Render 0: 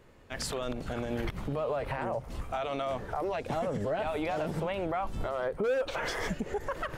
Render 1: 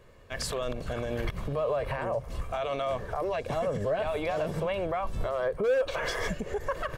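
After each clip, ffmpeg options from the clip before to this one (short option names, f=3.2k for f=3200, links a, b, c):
-af "aecho=1:1:1.8:0.42,volume=1dB"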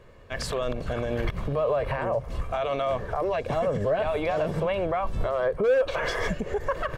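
-af "highshelf=f=5.4k:g=-8.5,volume=4dB"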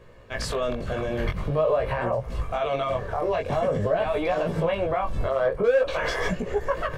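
-af "flanger=delay=16.5:depth=6:speed=0.47,volume=4.5dB"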